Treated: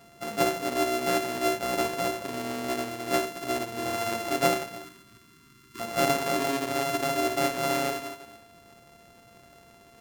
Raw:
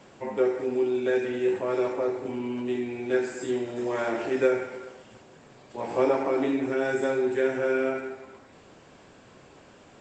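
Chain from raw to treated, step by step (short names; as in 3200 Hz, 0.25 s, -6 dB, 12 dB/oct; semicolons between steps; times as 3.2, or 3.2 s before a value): sample sorter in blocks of 64 samples; 4.84–5.8 Chebyshev band-stop 410–970 Hz, order 5; two-slope reverb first 0.27 s, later 1.5 s, from -18 dB, DRR 13 dB; gain -2 dB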